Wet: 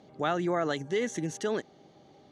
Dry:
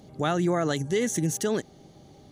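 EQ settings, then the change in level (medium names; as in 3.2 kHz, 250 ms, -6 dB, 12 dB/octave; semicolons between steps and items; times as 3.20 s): high-pass 420 Hz 6 dB/octave; distance through air 59 m; treble shelf 6.4 kHz -11.5 dB; 0.0 dB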